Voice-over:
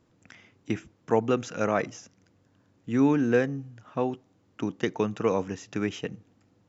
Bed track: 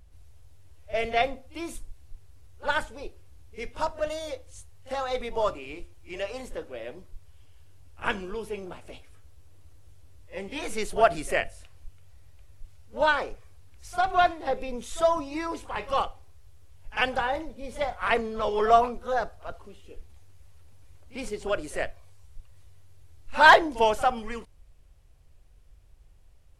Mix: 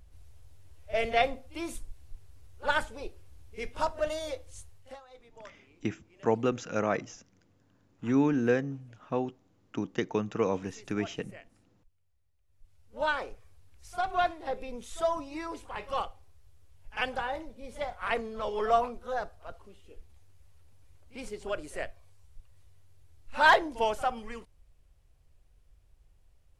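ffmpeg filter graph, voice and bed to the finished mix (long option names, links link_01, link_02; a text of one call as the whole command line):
ffmpeg -i stem1.wav -i stem2.wav -filter_complex "[0:a]adelay=5150,volume=-3dB[link_01];[1:a]volume=17dB,afade=type=out:start_time=4.67:duration=0.33:silence=0.0707946,afade=type=in:start_time=12.43:duration=0.69:silence=0.125893[link_02];[link_01][link_02]amix=inputs=2:normalize=0" out.wav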